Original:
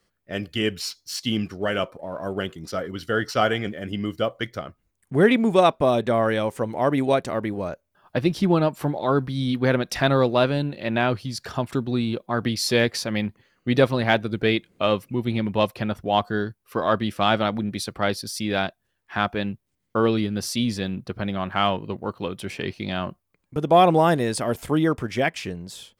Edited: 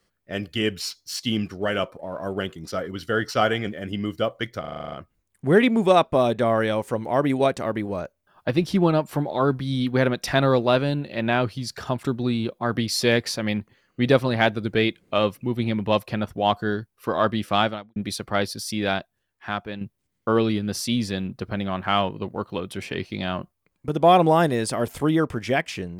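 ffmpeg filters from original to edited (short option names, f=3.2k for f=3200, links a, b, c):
-filter_complex "[0:a]asplit=11[a][b][c][d][e][f][g][h][i][j][k];[a]atrim=end=4.642[l];[b]atrim=start=4.598:end=4.642[m];[c]atrim=start=4.598:end=4.642[n];[d]atrim=start=4.598:end=4.642[o];[e]atrim=start=4.598:end=4.642[p];[f]atrim=start=4.598:end=4.642[q];[g]atrim=start=4.598:end=4.642[r];[h]atrim=start=4.598:end=4.642[s];[i]atrim=start=4.598:end=17.64,asetpts=PTS-STARTPTS,afade=t=out:st=12.692:d=0.35:c=qua[t];[j]atrim=start=17.64:end=19.49,asetpts=PTS-STARTPTS,afade=t=in:d=0.004:c=hsin,afade=t=out:st=0.93:d=0.92:silence=0.375837[u];[k]atrim=start=19.49,asetpts=PTS-STARTPTS,afade=t=in:d=0.004:c=hsin:silence=0.375837[v];[l][m]acrossfade=d=0.004:c1=hsin:c2=hsin[w];[w][n]acrossfade=d=0.004:c1=hsin:c2=hsin[x];[x][o]acrossfade=d=0.004:c1=hsin:c2=hsin[y];[y][p]acrossfade=d=0.004:c1=hsin:c2=hsin[z];[z][q]acrossfade=d=0.004:c1=hsin:c2=hsin[aa];[aa][r]acrossfade=d=0.004:c1=hsin:c2=hsin[ab];[ab][s]acrossfade=d=0.004:c1=hsin:c2=hsin[ac];[t][u][v]concat=n=3:v=0:a=1[ad];[ac][ad]acrossfade=d=0.004:c1=hsin:c2=hsin"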